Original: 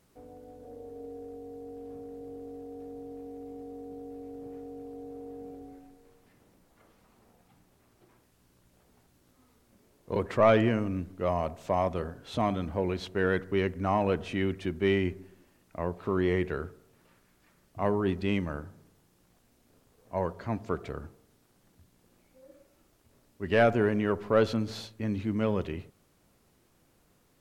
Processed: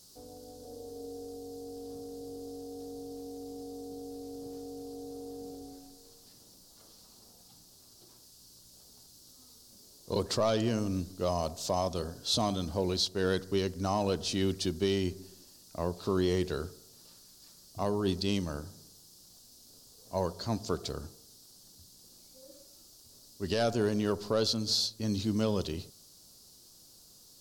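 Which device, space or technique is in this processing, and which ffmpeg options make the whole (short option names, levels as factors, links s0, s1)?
over-bright horn tweeter: -af "highshelf=f=3200:t=q:w=3:g=14,alimiter=limit=0.126:level=0:latency=1:release=384"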